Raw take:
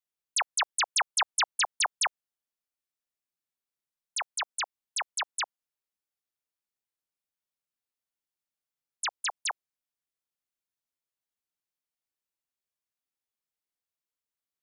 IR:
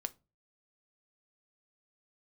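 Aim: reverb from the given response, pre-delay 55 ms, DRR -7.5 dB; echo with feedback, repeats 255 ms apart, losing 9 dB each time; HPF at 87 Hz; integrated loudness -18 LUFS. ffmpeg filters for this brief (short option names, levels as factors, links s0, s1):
-filter_complex "[0:a]highpass=87,aecho=1:1:255|510|765|1020:0.355|0.124|0.0435|0.0152,asplit=2[s0][s1];[1:a]atrim=start_sample=2205,adelay=55[s2];[s1][s2]afir=irnorm=-1:irlink=0,volume=2.82[s3];[s0][s3]amix=inputs=2:normalize=0,volume=1.5"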